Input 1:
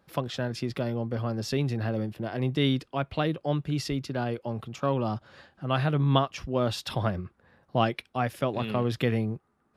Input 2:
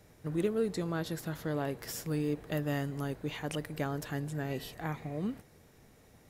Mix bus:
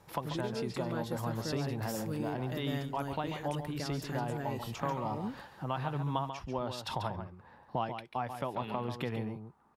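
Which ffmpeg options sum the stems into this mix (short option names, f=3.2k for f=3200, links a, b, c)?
-filter_complex "[0:a]equalizer=f=910:t=o:w=0.5:g=13.5,acompressor=threshold=-37dB:ratio=2.5,volume=-0.5dB,asplit=2[a][b];[b]volume=-8.5dB[c];[1:a]alimiter=level_in=2dB:limit=-24dB:level=0:latency=1:release=262,volume=-2dB,volume=-3.5dB[d];[c]aecho=0:1:140:1[e];[a][d][e]amix=inputs=3:normalize=0"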